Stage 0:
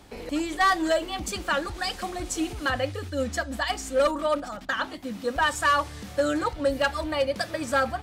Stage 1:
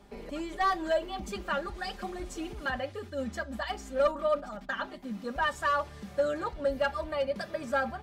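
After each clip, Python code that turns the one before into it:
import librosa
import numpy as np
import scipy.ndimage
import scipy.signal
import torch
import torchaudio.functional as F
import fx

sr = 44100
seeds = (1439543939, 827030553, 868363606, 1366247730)

y = fx.high_shelf(x, sr, hz=2100.0, db=-8.5)
y = y + 0.62 * np.pad(y, (int(5.0 * sr / 1000.0), 0))[:len(y)]
y = fx.dynamic_eq(y, sr, hz=8800.0, q=1.5, threshold_db=-53.0, ratio=4.0, max_db=-4)
y = y * 10.0 ** (-5.0 / 20.0)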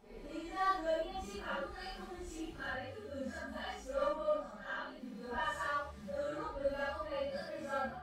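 y = fx.phase_scramble(x, sr, seeds[0], window_ms=200)
y = y * 10.0 ** (-7.5 / 20.0)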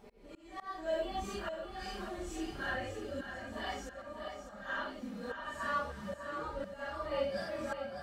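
y = fx.auto_swell(x, sr, attack_ms=491.0)
y = fx.echo_feedback(y, sr, ms=600, feedback_pct=36, wet_db=-8.5)
y = y * 10.0 ** (4.0 / 20.0)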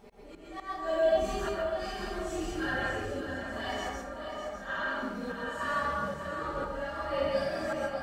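y = fx.rev_plate(x, sr, seeds[1], rt60_s=0.8, hf_ratio=0.5, predelay_ms=115, drr_db=-1.0)
y = y * 10.0 ** (2.5 / 20.0)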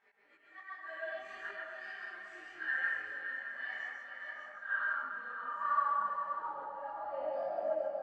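y = fx.filter_sweep_bandpass(x, sr, from_hz=1800.0, to_hz=640.0, start_s=4.15, end_s=7.81, q=5.8)
y = y + 10.0 ** (-9.0 / 20.0) * np.pad(y, (int(420 * sr / 1000.0), 0))[:len(y)]
y = fx.detune_double(y, sr, cents=23)
y = y * 10.0 ** (6.5 / 20.0)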